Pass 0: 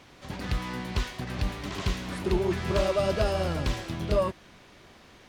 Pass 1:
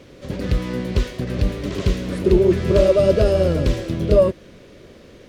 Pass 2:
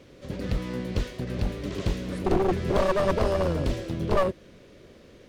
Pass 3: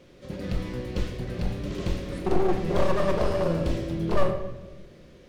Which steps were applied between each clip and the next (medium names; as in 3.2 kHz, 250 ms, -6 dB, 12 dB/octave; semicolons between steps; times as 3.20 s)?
resonant low shelf 650 Hz +6.5 dB, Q 3; trim +3 dB
one-sided wavefolder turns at -15.5 dBFS; trim -6.5 dB
simulated room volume 500 m³, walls mixed, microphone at 0.91 m; trim -3 dB